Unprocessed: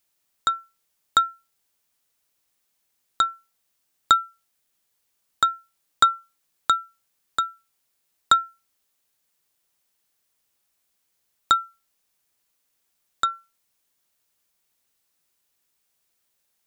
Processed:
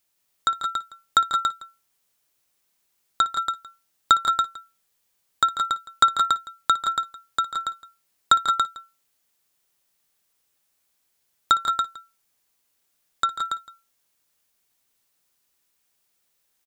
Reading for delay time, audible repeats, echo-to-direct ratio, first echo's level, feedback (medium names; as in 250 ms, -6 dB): 59 ms, 5, -3.0 dB, -17.0 dB, no regular repeats